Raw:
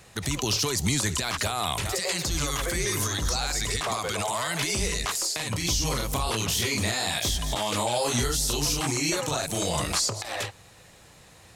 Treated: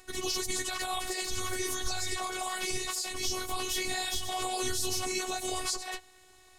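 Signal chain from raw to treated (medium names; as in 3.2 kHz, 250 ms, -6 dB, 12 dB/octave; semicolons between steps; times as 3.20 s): plain phase-vocoder stretch 0.57×; robot voice 372 Hz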